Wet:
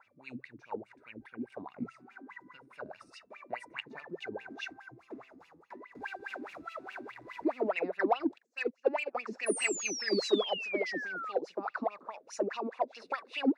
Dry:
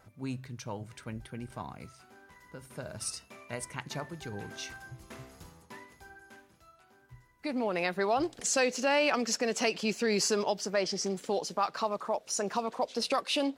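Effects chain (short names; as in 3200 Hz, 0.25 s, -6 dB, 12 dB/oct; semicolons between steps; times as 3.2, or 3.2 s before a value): 5.95–7.72 zero-crossing step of -37.5 dBFS; notch 3100 Hz, Q 6.2; wah 4.8 Hz 250–2900 Hz, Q 9.4; 1.77–2.57 ten-band EQ 125 Hz +11 dB, 250 Hz +10 dB, 500 Hz -4 dB, 1000 Hz +6 dB, 2000 Hz +4 dB, 8000 Hz +5 dB; 9.46–11.32 painted sound fall 1200–10000 Hz -51 dBFS; in parallel at -5.5 dB: soft clip -36.5 dBFS, distortion -10 dB; 8.38–9.15 on the sum: upward expander 2.5:1, over -50 dBFS; gain +8.5 dB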